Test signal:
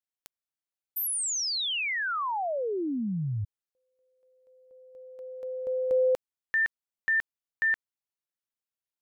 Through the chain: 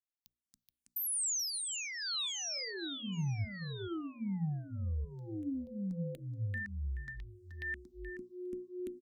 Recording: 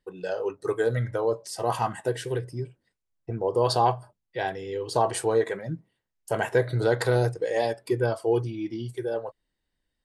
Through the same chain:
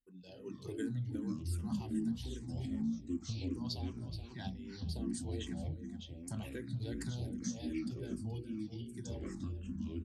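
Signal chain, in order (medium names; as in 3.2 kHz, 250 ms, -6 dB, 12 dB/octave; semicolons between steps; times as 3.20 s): delay 427 ms -15.5 dB; level rider gain up to 15 dB; ever faster or slower copies 172 ms, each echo -6 st, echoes 2; FFT filter 160 Hz 0 dB, 240 Hz +4 dB, 470 Hz -21 dB, 1.2 kHz -20 dB, 3.7 kHz -4 dB; compression 2.5:1, threshold -28 dBFS; hum notches 60/120/180/240/300/360/420/480/540/600 Hz; barber-pole phaser -2.6 Hz; trim -8 dB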